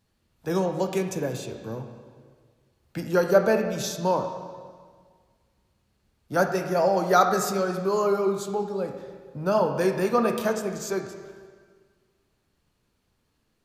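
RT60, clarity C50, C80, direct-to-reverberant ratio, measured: 1.7 s, 7.0 dB, 8.5 dB, 5.0 dB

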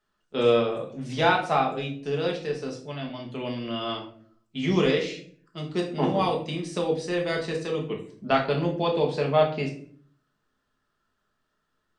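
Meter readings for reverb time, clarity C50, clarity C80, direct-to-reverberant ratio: 0.50 s, 8.5 dB, 12.5 dB, −0.5 dB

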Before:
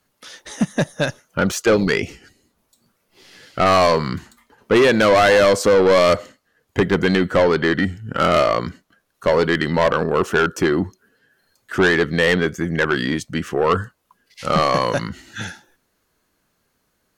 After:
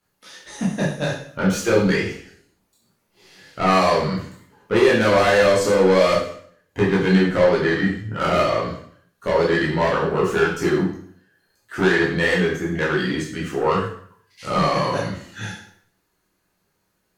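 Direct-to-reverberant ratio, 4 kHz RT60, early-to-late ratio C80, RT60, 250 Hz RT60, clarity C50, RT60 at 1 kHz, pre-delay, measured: −6.0 dB, 0.55 s, 8.0 dB, 0.60 s, 0.60 s, 4.0 dB, 0.60 s, 10 ms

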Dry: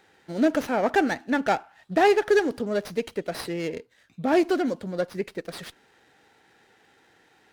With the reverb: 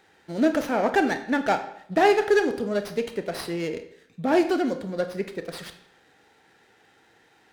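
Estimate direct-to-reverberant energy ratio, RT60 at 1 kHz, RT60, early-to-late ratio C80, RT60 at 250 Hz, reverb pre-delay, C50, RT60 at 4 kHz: 8.0 dB, 0.70 s, 0.70 s, 14.0 dB, 0.70 s, 27 ms, 11.0 dB, 0.55 s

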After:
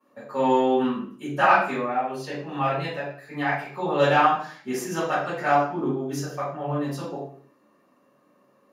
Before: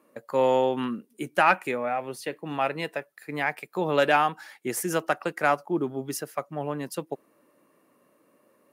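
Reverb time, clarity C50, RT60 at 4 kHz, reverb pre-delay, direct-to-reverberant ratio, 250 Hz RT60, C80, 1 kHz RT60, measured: 0.50 s, 1.5 dB, 0.45 s, 3 ms, −16.5 dB, 0.55 s, 6.0 dB, 0.50 s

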